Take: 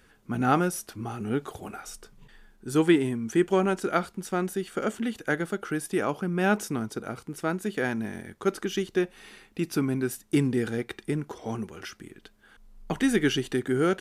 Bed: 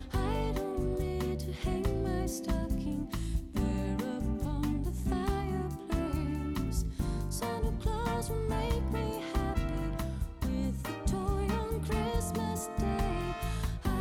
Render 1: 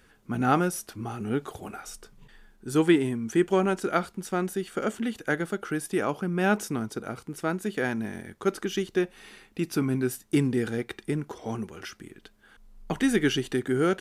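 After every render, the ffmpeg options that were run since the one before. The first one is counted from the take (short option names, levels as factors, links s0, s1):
-filter_complex "[0:a]asettb=1/sr,asplit=3[s0][s1][s2];[s0]atrim=end=9.804[s3];[s1]atrim=start=9.8:end=10.29,asetpts=PTS-STARTPTS,afade=t=in:d=0.004:c=qsin,afade=t=out:st=0.486:d=0.004:c=qsin,asplit=2[s4][s5];[s5]adelay=16,volume=0.299[s6];[s4][s6]amix=inputs=2:normalize=0,atrim=end_sample=21609[s7];[s2]atrim=start=10.286[s8];[s3][s7]acrossfade=d=0.004:c1=hsin:c2=qsin[s9];[s9][s8]acrossfade=d=0.004:c1=qsin:c2=hsin"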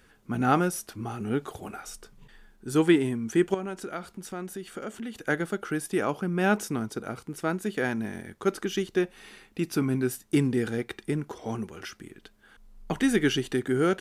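-filter_complex "[0:a]asettb=1/sr,asplit=3[s0][s1][s2];[s0]atrim=end=3.544[s3];[s1]atrim=start=3.54:end=5.14,asetpts=PTS-STARTPTS,afade=t=in:d=0.004:c=qsin,afade=t=out:st=1.596:d=0.004:c=qsin,acompressor=threshold=0.0126:ratio=2:attack=3.2:release=140:knee=1:detection=peak[s4];[s2]atrim=start=5.136[s5];[s3][s4]acrossfade=d=0.004:c1=hsin:c2=qsin[s6];[s6][s5]acrossfade=d=0.004:c1=qsin:c2=hsin"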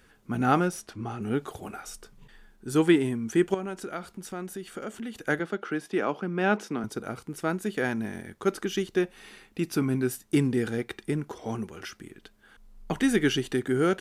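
-filter_complex "[0:a]asettb=1/sr,asplit=3[s0][s1][s2];[s0]atrim=end=0.604[s3];[s1]atrim=start=0.6:end=1.22,asetpts=PTS-STARTPTS,afade=t=in:d=0.004:c=qsin,afade=t=out:st=0.616:d=0.004:c=qsin,adynamicsmooth=sensitivity=4.5:basefreq=7500[s4];[s2]atrim=start=1.216[s5];[s3][s4]acrossfade=d=0.004:c1=hsin:c2=qsin[s6];[s6][s5]acrossfade=d=0.004:c1=qsin:c2=hsin,asettb=1/sr,asplit=3[s7][s8][s9];[s7]atrim=end=5.394[s10];[s8]atrim=start=5.39:end=6.84,asetpts=PTS-STARTPTS,afade=t=in:d=0.004:c=qsin,afade=t=out:st=1.446:d=0.004:c=qsin,acrossover=split=160 5300:gain=0.126 1 0.158[s11][s12][s13];[s11][s12][s13]amix=inputs=3:normalize=0[s14];[s9]atrim=start=6.836[s15];[s10][s14]acrossfade=d=0.004:c1=hsin:c2=qsin[s16];[s16][s15]acrossfade=d=0.004:c1=qsin:c2=hsin"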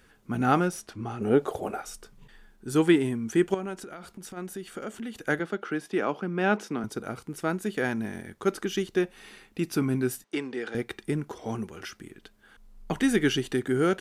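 -filter_complex "[0:a]asettb=1/sr,asplit=3[s0][s1][s2];[s0]atrim=end=1.214[s3];[s1]atrim=start=1.21:end=1.82,asetpts=PTS-STARTPTS,afade=t=in:d=0.004:c=qsin,afade=t=out:st=0.606:d=0.004:c=qsin,equalizer=f=550:t=o:w=1.4:g=12.5[s4];[s2]atrim=start=1.816[s5];[s3][s4]acrossfade=d=0.004:c1=hsin:c2=qsin[s6];[s6][s5]acrossfade=d=0.004:c1=qsin:c2=hsin,asplit=3[s7][s8][s9];[s7]afade=t=out:st=3.75:d=0.02[s10];[s8]acompressor=threshold=0.0141:ratio=6:attack=3.2:release=140:knee=1:detection=peak,afade=t=in:st=3.75:d=0.02,afade=t=out:st=4.36:d=0.02[s11];[s9]afade=t=in:st=4.36:d=0.02[s12];[s10][s11][s12]amix=inputs=3:normalize=0,asettb=1/sr,asplit=3[s13][s14][s15];[s13]atrim=end=10.244[s16];[s14]atrim=start=10.24:end=10.75,asetpts=PTS-STARTPTS,afade=t=in:d=0.004:c=qsin,afade=t=out:st=0.506:d=0.004:c=qsin,highpass=470,lowpass=4700[s17];[s15]atrim=start=10.746[s18];[s16][s17]acrossfade=d=0.004:c1=hsin:c2=qsin[s19];[s19][s18]acrossfade=d=0.004:c1=qsin:c2=hsin"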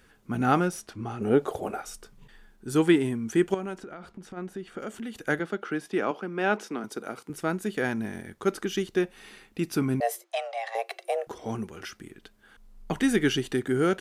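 -filter_complex "[0:a]asettb=1/sr,asplit=3[s0][s1][s2];[s0]atrim=end=3.784[s3];[s1]atrim=start=3.78:end=4.79,asetpts=PTS-STARTPTS,afade=t=in:d=0.004:c=qsin,afade=t=out:st=1.006:d=0.004:c=qsin,aemphasis=mode=reproduction:type=75fm[s4];[s2]atrim=start=4.786[s5];[s3][s4]acrossfade=d=0.004:c1=hsin:c2=qsin[s6];[s6][s5]acrossfade=d=0.004:c1=qsin:c2=hsin,asettb=1/sr,asplit=3[s7][s8][s9];[s7]atrim=end=6.114[s10];[s8]atrim=start=6.11:end=7.3,asetpts=PTS-STARTPTS,afade=t=in:d=0.004:c=qsin,afade=t=out:st=1.186:d=0.004:c=qsin,highpass=250[s11];[s9]atrim=start=7.296[s12];[s10][s11]acrossfade=d=0.004:c1=hsin:c2=qsin[s13];[s13][s12]acrossfade=d=0.004:c1=qsin:c2=hsin,asettb=1/sr,asplit=3[s14][s15][s16];[s14]atrim=end=10.004[s17];[s15]atrim=start=10:end=11.27,asetpts=PTS-STARTPTS,afade=t=in:d=0.004:c=qsin,afade=t=out:st=1.266:d=0.004:c=qsin,afreqshift=330[s18];[s16]atrim=start=11.266[s19];[s17][s18]acrossfade=d=0.004:c1=hsin:c2=qsin[s20];[s20][s19]acrossfade=d=0.004:c1=qsin:c2=hsin"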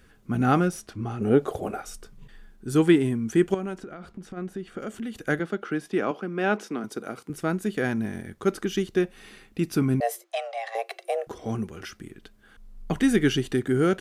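-af "lowshelf=f=240:g=6.5,bandreject=f=900:w=12"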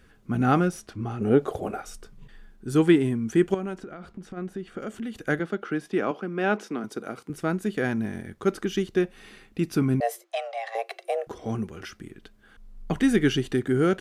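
-af "highshelf=f=6600:g=-4.5"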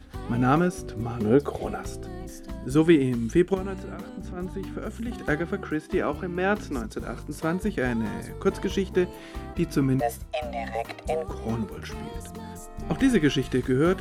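-filter_complex "[1:a]volume=0.531[s0];[0:a][s0]amix=inputs=2:normalize=0"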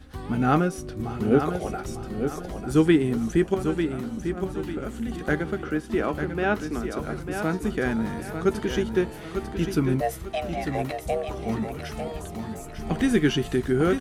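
-filter_complex "[0:a]asplit=2[s0][s1];[s1]adelay=13,volume=0.251[s2];[s0][s2]amix=inputs=2:normalize=0,asplit=2[s3][s4];[s4]aecho=0:1:897|1794|2691|3588:0.422|0.148|0.0517|0.0181[s5];[s3][s5]amix=inputs=2:normalize=0"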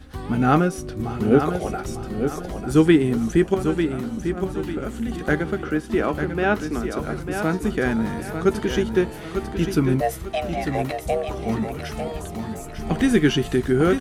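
-af "volume=1.5"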